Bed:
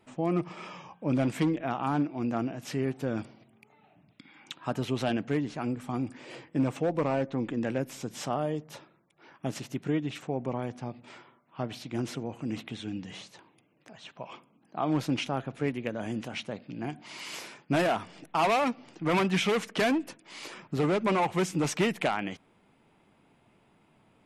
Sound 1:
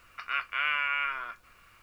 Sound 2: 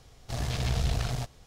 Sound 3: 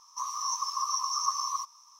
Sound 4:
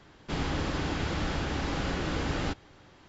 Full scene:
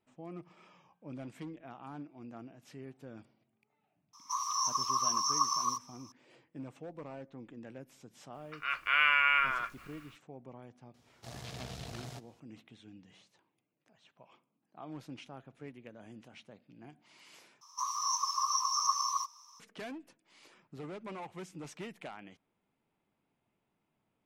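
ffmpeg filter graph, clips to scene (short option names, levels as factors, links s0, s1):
-filter_complex "[3:a]asplit=2[s0][s1];[0:a]volume=0.133[s2];[1:a]dynaudnorm=f=180:g=5:m=4.73[s3];[2:a]highpass=140[s4];[s2]asplit=2[s5][s6];[s5]atrim=end=17.614[s7];[s1]atrim=end=1.99,asetpts=PTS-STARTPTS,volume=0.891[s8];[s6]atrim=start=19.596[s9];[s0]atrim=end=1.99,asetpts=PTS-STARTPTS,volume=0.944,afade=t=in:d=0.004:c=hsin,afade=t=out:st=1.986:d=0.004:c=hsin,adelay=182133S[s10];[s3]atrim=end=1.82,asetpts=PTS-STARTPTS,volume=0.355,afade=t=in:d=0.004:c=hsin,afade=t=out:st=1.816:d=0.004:c=hsin,adelay=367794S[s11];[s4]atrim=end=1.46,asetpts=PTS-STARTPTS,volume=0.299,afade=t=in:d=0.004:c=hsin,afade=t=out:st=1.456:d=0.004:c=hsin,adelay=10940[s12];[s7][s8]acrossfade=d=0.004:c1=hsin:c2=hsin[s13];[s13][s9]acrossfade=d=0.004:c1=hsin:c2=hsin[s14];[s14][s10][s11][s12]amix=inputs=4:normalize=0"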